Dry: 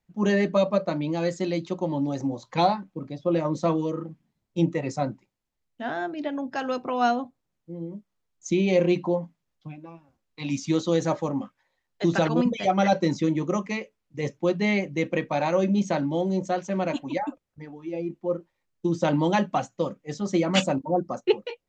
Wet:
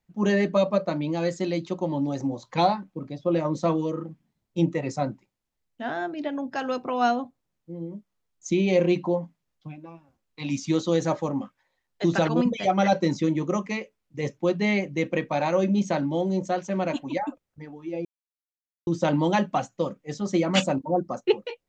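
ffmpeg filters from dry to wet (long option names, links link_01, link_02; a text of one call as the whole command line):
ffmpeg -i in.wav -filter_complex "[0:a]asplit=3[link_01][link_02][link_03];[link_01]atrim=end=18.05,asetpts=PTS-STARTPTS,afade=type=out:start_time=18.046:duration=0.004:curve=hsin[link_04];[link_02]atrim=start=18.05:end=18.87,asetpts=PTS-STARTPTS,volume=0[link_05];[link_03]atrim=start=18.87,asetpts=PTS-STARTPTS,afade=type=in:duration=0.004:curve=hsin[link_06];[link_04][link_05][link_06]concat=n=3:v=0:a=1" out.wav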